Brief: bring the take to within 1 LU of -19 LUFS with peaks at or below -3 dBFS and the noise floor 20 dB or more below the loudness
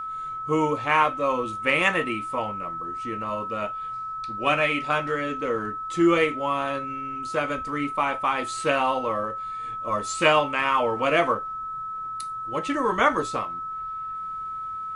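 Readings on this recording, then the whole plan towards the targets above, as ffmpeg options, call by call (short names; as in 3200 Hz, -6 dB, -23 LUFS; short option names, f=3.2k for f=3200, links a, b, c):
steady tone 1300 Hz; tone level -30 dBFS; loudness -25.5 LUFS; peak -5.5 dBFS; loudness target -19.0 LUFS
-> -af "bandreject=f=1.3k:w=30"
-af "volume=6.5dB,alimiter=limit=-3dB:level=0:latency=1"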